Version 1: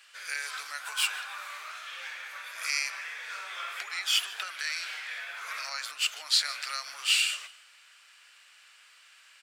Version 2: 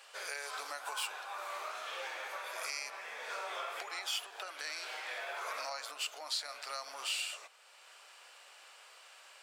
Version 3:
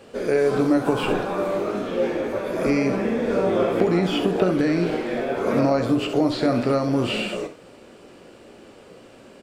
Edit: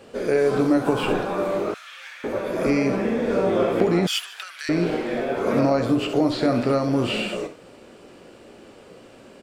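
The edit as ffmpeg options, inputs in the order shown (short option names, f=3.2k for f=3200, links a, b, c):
-filter_complex "[0:a]asplit=2[a][b];[2:a]asplit=3[c][d][e];[c]atrim=end=1.742[f];[a]atrim=start=1.738:end=2.242[g];[d]atrim=start=2.238:end=4.072[h];[b]atrim=start=4.068:end=4.692[i];[e]atrim=start=4.688[j];[f][g]acrossfade=d=0.004:c1=hsin:c2=hsin[k];[k][h]acrossfade=d=0.004:c1=hsin:c2=hsin[l];[l][i]acrossfade=d=0.004:c1=hsin:c2=hsin[m];[m][j]acrossfade=d=0.004:c1=hsin:c2=hsin"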